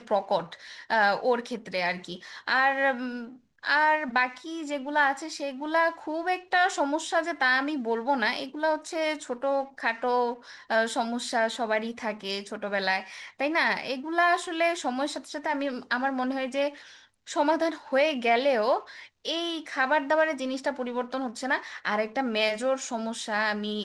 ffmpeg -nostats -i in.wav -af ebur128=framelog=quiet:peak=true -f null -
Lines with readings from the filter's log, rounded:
Integrated loudness:
  I:         -27.2 LUFS
  Threshold: -37.4 LUFS
Loudness range:
  LRA:         2.6 LU
  Threshold: -47.4 LUFS
  LRA low:   -28.8 LUFS
  LRA high:  -26.2 LUFS
True peak:
  Peak:      -10.8 dBFS